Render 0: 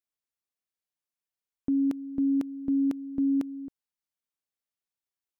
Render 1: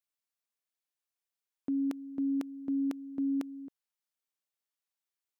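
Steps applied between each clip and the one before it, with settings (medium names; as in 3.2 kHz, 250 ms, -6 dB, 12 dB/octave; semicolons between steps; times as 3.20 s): high-pass 460 Hz 6 dB/octave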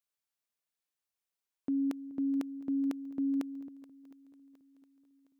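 shuffle delay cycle 713 ms, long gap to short 1.5:1, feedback 40%, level -19 dB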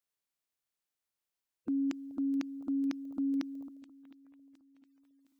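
coarse spectral quantiser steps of 30 dB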